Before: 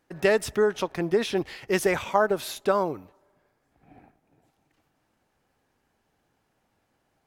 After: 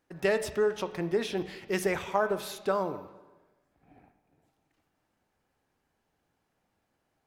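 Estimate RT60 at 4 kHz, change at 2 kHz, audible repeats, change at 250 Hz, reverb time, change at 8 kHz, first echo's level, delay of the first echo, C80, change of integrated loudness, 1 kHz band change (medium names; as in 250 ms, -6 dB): 1.1 s, -5.0 dB, no echo, -5.0 dB, 1.2 s, -5.5 dB, no echo, no echo, 14.0 dB, -5.0 dB, -5.5 dB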